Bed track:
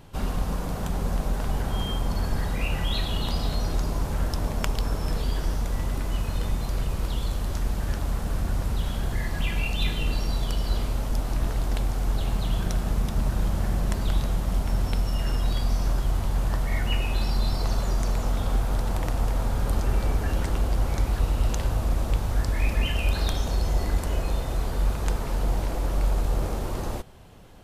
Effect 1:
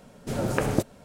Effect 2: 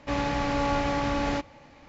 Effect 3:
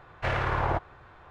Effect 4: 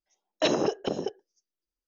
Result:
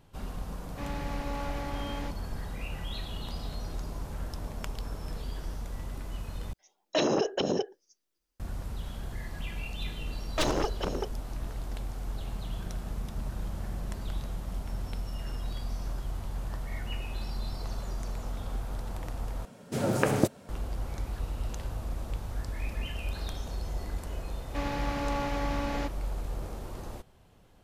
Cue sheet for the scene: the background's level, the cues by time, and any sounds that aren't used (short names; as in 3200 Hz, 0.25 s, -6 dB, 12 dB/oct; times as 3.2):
bed track -10.5 dB
0.7 add 2 -11 dB
6.53 replace with 4 -17 dB + maximiser +25 dB
9.96 add 4 -1 dB + one-sided fold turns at -26.5 dBFS
19.45 replace with 1 + HPF 86 Hz
24.47 add 2 -6 dB
not used: 3